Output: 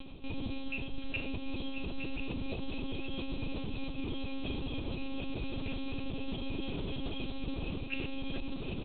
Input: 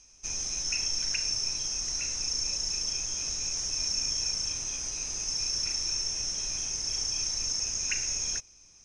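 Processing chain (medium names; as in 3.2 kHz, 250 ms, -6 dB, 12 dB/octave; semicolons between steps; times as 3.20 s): high-order bell 1.2 kHz -11 dB; on a send: delay 1030 ms -7.5 dB; on the sum: upward compressor, threshold -45 dBFS; graphic EQ 250/1000/2000 Hz +9/+7/-11 dB; monotone LPC vocoder at 8 kHz 270 Hz; reverse; compression 6:1, threshold -50 dBFS, peak gain reduction 15.5 dB; reverse; trim +17 dB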